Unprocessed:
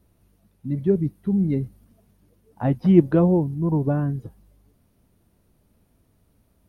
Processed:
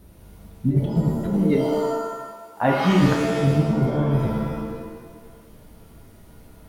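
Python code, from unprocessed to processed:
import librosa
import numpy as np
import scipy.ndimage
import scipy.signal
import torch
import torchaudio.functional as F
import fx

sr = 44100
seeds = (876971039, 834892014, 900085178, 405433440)

y = fx.highpass(x, sr, hz=940.0, slope=6, at=(1.33, 3.0))
y = fx.over_compress(y, sr, threshold_db=-27.0, ratio=-0.5)
y = fx.rev_shimmer(y, sr, seeds[0], rt60_s=1.2, semitones=7, shimmer_db=-2, drr_db=2.0)
y = y * librosa.db_to_amplitude(6.0)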